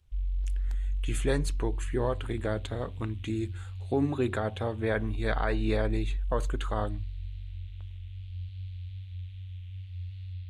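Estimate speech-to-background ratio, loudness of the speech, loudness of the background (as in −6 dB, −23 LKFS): 5.0 dB, −32.5 LKFS, −37.5 LKFS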